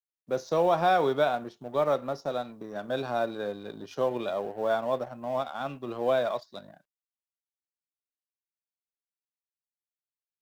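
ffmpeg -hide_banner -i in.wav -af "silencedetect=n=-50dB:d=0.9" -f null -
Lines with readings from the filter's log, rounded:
silence_start: 6.77
silence_end: 10.42 | silence_duration: 3.64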